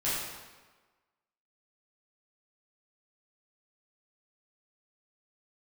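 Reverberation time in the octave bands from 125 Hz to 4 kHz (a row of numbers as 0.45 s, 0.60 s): 1.2 s, 1.2 s, 1.3 s, 1.3 s, 1.2 s, 1.0 s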